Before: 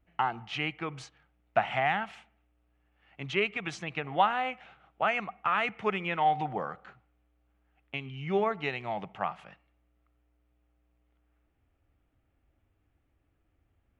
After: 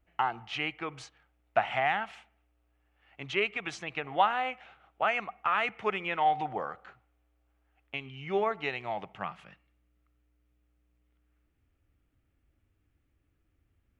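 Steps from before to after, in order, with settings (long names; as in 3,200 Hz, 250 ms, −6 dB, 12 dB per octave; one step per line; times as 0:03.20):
parametric band 170 Hz −7.5 dB 1.1 octaves, from 0:09.15 750 Hz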